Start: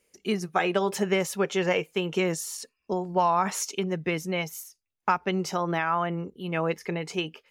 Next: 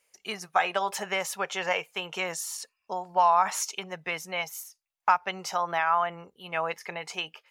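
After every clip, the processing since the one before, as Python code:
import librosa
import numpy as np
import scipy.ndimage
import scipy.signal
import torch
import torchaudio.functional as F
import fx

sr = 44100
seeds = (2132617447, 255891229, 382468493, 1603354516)

y = fx.low_shelf_res(x, sr, hz=500.0, db=-13.5, q=1.5)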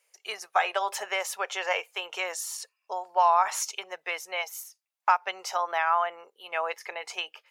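y = scipy.signal.sosfilt(scipy.signal.butter(4, 430.0, 'highpass', fs=sr, output='sos'), x)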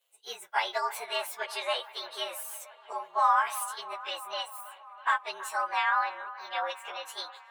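y = fx.partial_stretch(x, sr, pct=113)
y = fx.echo_wet_bandpass(y, sr, ms=325, feedback_pct=73, hz=1200.0, wet_db=-15.5)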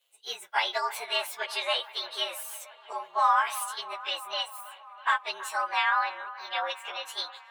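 y = fx.peak_eq(x, sr, hz=3400.0, db=5.5, octaves=1.5)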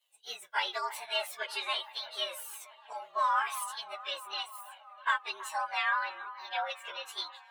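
y = fx.comb_cascade(x, sr, direction='falling', hz=1.1)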